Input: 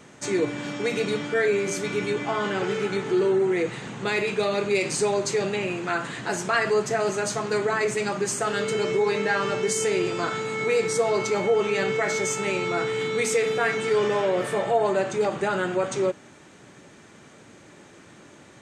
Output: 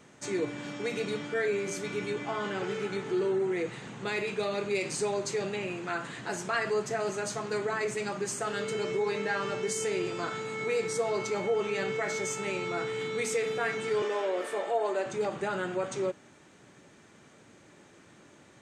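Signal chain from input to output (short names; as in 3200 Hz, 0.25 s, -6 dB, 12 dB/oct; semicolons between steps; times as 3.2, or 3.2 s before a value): 14.02–15.06 HPF 280 Hz 24 dB/oct; gain -7 dB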